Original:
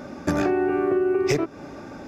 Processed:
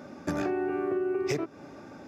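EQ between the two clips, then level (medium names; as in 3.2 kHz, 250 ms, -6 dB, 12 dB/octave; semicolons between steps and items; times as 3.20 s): high-pass 79 Hz; -7.5 dB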